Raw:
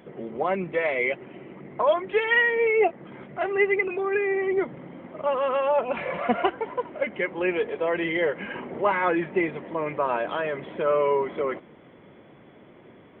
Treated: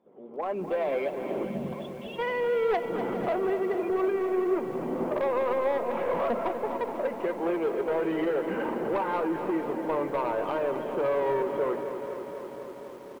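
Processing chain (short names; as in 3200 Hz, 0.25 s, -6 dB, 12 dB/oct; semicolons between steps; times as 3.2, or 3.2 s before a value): Doppler pass-by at 2.88, 13 m/s, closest 1.7 m; recorder AGC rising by 29 dB/s; notches 50/100/150/200/250/300 Hz; spectral gain 1.44–2.19, 240–2600 Hz -26 dB; ten-band EQ 125 Hz -7 dB, 250 Hz +5 dB, 500 Hz +4 dB, 1000 Hz +7 dB, 2000 Hz -10 dB; in parallel at -2 dB: compressor 10:1, threshold -32 dBFS, peak gain reduction 16.5 dB; on the sum: soft clip -22.5 dBFS, distortion -12 dB; air absorption 130 m; echo 0.414 s -15 dB; on a send at -23 dB: reverb RT60 0.75 s, pre-delay 25 ms; on the sum: lo-fi delay 0.247 s, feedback 80%, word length 9-bit, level -10 dB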